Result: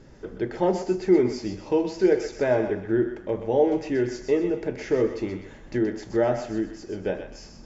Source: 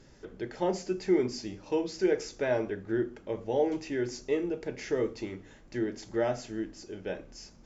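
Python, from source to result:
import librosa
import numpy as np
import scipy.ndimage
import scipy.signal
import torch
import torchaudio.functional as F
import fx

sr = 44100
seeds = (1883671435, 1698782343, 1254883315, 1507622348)

y = fx.recorder_agc(x, sr, target_db=-23.0, rise_db_per_s=5.8, max_gain_db=30)
y = fx.high_shelf(y, sr, hz=2200.0, db=-9.5)
y = fx.echo_thinned(y, sr, ms=126, feedback_pct=38, hz=810.0, wet_db=-7.0)
y = F.gain(torch.from_numpy(y), 7.0).numpy()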